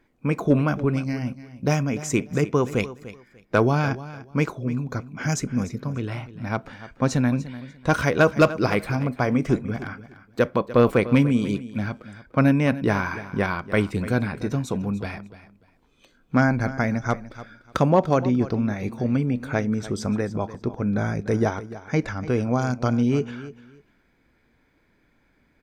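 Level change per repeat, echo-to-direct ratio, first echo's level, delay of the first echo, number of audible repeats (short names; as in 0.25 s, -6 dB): -13.5 dB, -15.5 dB, -15.5 dB, 0.295 s, 2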